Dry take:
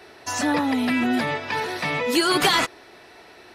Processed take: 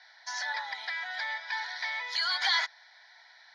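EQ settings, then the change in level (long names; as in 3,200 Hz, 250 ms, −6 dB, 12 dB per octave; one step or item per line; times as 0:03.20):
high-pass filter 990 Hz 24 dB per octave
low-pass filter 6,700 Hz 24 dB per octave
phaser with its sweep stopped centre 1,800 Hz, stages 8
−3.5 dB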